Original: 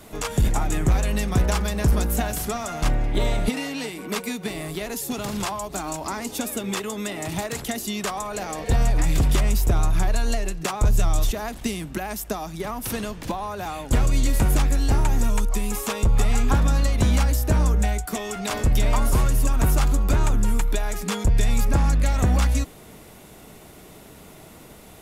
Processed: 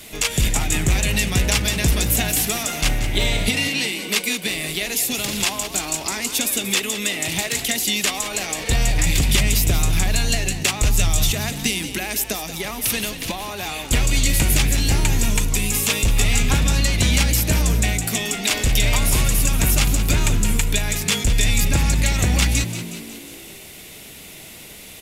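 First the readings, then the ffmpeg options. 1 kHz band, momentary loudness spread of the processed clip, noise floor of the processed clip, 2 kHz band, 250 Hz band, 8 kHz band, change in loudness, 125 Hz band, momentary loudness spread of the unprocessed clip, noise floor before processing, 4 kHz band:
−1.0 dB, 9 LU, −40 dBFS, +9.5 dB, +1.5 dB, +11.0 dB, +4.5 dB, +1.5 dB, 9 LU, −45 dBFS, +12.0 dB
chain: -filter_complex "[0:a]highshelf=frequency=1700:width_type=q:width=1.5:gain=10,asplit=2[link_01][link_02];[link_02]asplit=6[link_03][link_04][link_05][link_06][link_07][link_08];[link_03]adelay=182,afreqshift=55,volume=-11dB[link_09];[link_04]adelay=364,afreqshift=110,volume=-15.9dB[link_10];[link_05]adelay=546,afreqshift=165,volume=-20.8dB[link_11];[link_06]adelay=728,afreqshift=220,volume=-25.6dB[link_12];[link_07]adelay=910,afreqshift=275,volume=-30.5dB[link_13];[link_08]adelay=1092,afreqshift=330,volume=-35.4dB[link_14];[link_09][link_10][link_11][link_12][link_13][link_14]amix=inputs=6:normalize=0[link_15];[link_01][link_15]amix=inputs=2:normalize=0"

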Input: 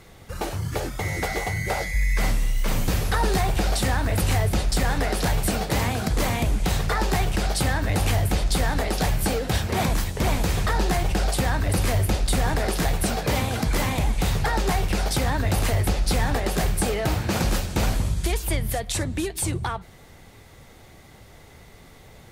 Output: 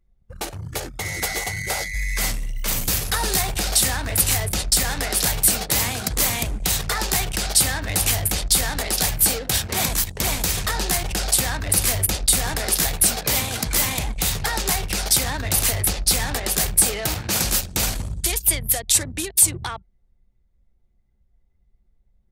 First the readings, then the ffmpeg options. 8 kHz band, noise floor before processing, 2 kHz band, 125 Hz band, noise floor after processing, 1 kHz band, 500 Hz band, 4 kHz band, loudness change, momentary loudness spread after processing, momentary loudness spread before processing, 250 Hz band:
+12.5 dB, −48 dBFS, +2.0 dB, −4.5 dB, −63 dBFS, −2.0 dB, −3.5 dB, +7.0 dB, +4.5 dB, 8 LU, 4 LU, −4.5 dB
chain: -af "anlmdn=25.1,crystalizer=i=6.5:c=0,volume=-4.5dB"

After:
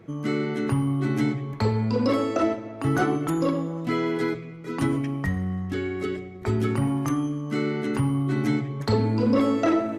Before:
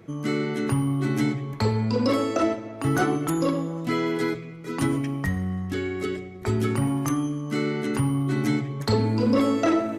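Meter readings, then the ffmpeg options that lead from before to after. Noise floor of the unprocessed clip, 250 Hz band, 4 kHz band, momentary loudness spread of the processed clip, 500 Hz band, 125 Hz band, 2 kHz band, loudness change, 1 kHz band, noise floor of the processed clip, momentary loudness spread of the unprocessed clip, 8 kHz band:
−38 dBFS, 0.0 dB, −3.0 dB, 7 LU, 0.0 dB, 0.0 dB, −1.0 dB, 0.0 dB, −0.5 dB, −38 dBFS, 7 LU, −5.5 dB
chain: -af "highshelf=frequency=4600:gain=-7.5"

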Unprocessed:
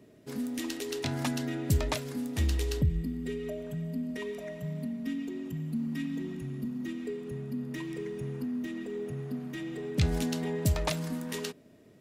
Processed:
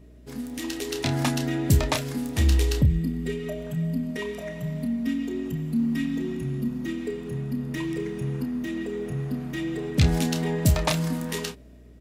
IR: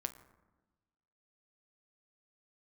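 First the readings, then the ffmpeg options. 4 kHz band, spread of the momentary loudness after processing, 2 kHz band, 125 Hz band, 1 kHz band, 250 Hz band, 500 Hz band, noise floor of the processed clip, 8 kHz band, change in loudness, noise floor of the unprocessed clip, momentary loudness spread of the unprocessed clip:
+7.0 dB, 10 LU, +7.0 dB, +7.5 dB, +7.0 dB, +6.5 dB, +5.0 dB, −48 dBFS, +6.5 dB, +6.5 dB, −57 dBFS, 8 LU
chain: -filter_complex "[0:a]dynaudnorm=framelen=160:gausssize=9:maxgain=6.5dB,aeval=exprs='val(0)+0.00355*(sin(2*PI*60*n/s)+sin(2*PI*2*60*n/s)/2+sin(2*PI*3*60*n/s)/3+sin(2*PI*4*60*n/s)/4+sin(2*PI*5*60*n/s)/5)':channel_layout=same,asplit=2[link_01][link_02];[link_02]adelay=30,volume=-8.5dB[link_03];[link_01][link_03]amix=inputs=2:normalize=0"

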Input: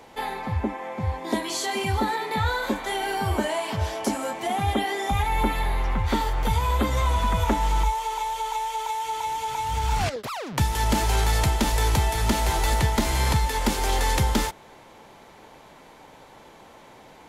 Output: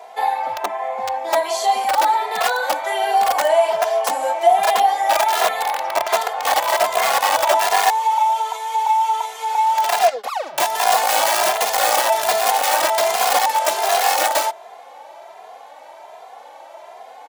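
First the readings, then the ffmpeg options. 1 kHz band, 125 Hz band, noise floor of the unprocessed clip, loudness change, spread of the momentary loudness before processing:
+10.5 dB, below −30 dB, −49 dBFS, +7.5 dB, 6 LU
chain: -filter_complex "[0:a]aeval=exprs='(mod(6.68*val(0)+1,2)-1)/6.68':channel_layout=same,highpass=frequency=680:width_type=q:width=4.9,asplit=2[link_01][link_02];[link_02]adelay=2.5,afreqshift=1.3[link_03];[link_01][link_03]amix=inputs=2:normalize=1,volume=5.5dB"

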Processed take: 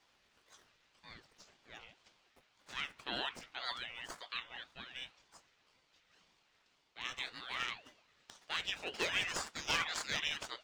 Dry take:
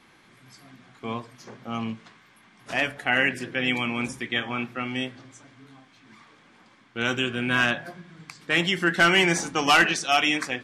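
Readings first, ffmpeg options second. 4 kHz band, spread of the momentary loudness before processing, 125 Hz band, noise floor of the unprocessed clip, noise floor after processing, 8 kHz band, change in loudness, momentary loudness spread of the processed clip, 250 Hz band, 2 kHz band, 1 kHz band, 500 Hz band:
−12.0 dB, 16 LU, −24.0 dB, −57 dBFS, −74 dBFS, −12.0 dB, −15.5 dB, 21 LU, −26.5 dB, −17.5 dB, −17.5 dB, −20.0 dB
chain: -filter_complex "[0:a]aderivative,acrossover=split=570|6700[link_01][link_02][link_03];[link_03]acrusher=samples=29:mix=1:aa=0.000001[link_04];[link_01][link_02][link_04]amix=inputs=3:normalize=0,aeval=exprs='val(0)*sin(2*PI*770*n/s+770*0.7/1.9*sin(2*PI*1.9*n/s))':channel_layout=same,volume=-2dB"

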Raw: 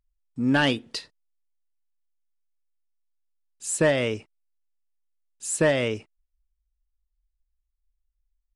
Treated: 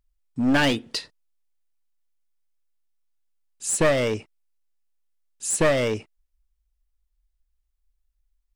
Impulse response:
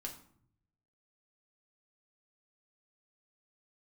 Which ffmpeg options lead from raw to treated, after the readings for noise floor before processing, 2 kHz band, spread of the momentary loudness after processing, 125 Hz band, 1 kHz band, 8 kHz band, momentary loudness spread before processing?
−78 dBFS, +0.5 dB, 13 LU, +0.5 dB, +2.5 dB, +3.5 dB, 15 LU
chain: -af "aeval=exprs='clip(val(0),-1,0.0668)':channel_layout=same,volume=4dB"

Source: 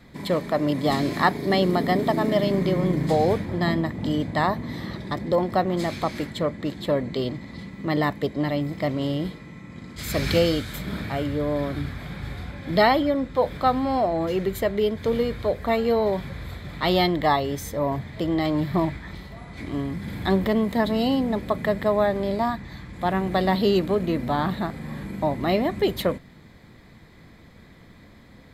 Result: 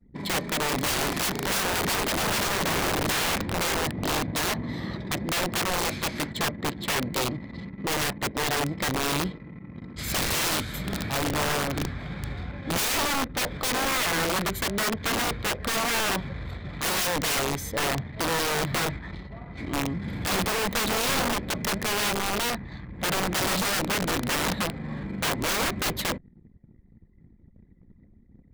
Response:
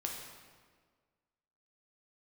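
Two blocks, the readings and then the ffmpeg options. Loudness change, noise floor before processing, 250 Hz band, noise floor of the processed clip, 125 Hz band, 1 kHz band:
−2.0 dB, −49 dBFS, −7.0 dB, −55 dBFS, −4.5 dB, −3.0 dB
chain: -af "aeval=exprs='(mod(11.2*val(0)+1,2)-1)/11.2':channel_layout=same,anlmdn=0.158"

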